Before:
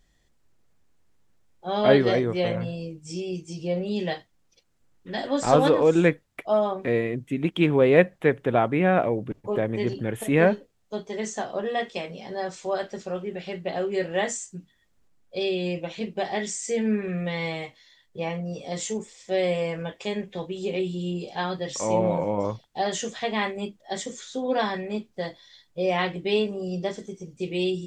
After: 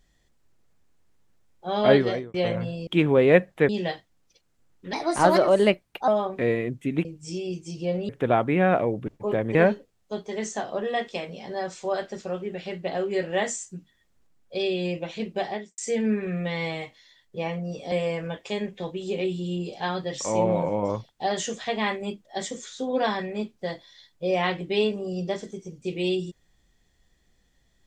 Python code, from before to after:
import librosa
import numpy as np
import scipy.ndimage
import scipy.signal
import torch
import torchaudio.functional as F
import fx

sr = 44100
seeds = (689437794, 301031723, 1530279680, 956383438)

y = fx.studio_fade_out(x, sr, start_s=16.23, length_s=0.36)
y = fx.edit(y, sr, fx.fade_out_span(start_s=1.95, length_s=0.39),
    fx.swap(start_s=2.87, length_s=1.04, other_s=7.51, other_length_s=0.82),
    fx.speed_span(start_s=5.15, length_s=1.39, speed=1.21),
    fx.cut(start_s=9.79, length_s=0.57),
    fx.cut(start_s=18.73, length_s=0.74), tone=tone)